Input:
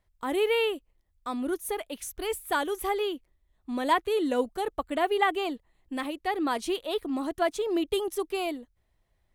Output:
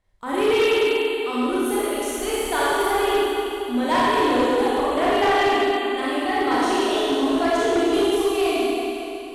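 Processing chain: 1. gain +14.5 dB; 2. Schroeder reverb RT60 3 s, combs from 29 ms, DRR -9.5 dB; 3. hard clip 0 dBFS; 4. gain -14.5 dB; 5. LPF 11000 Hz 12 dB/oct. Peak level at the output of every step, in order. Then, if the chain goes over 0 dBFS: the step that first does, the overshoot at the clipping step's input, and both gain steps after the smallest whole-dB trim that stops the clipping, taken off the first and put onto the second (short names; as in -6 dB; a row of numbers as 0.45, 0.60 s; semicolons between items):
+2.5, +10.0, 0.0, -14.5, -14.0 dBFS; step 1, 10.0 dB; step 1 +4.5 dB, step 4 -4.5 dB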